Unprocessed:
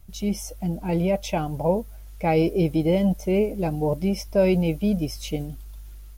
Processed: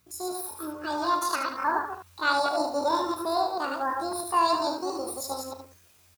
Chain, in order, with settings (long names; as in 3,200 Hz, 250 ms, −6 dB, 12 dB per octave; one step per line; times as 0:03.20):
delay that plays each chunk backwards 109 ms, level −3.5 dB
high-pass filter 700 Hz 6 dB per octave
high-shelf EQ 9,900 Hz −2.5 dB
pitch shifter +10 semitones
ambience of single reflections 36 ms −10.5 dB, 76 ms −8 dB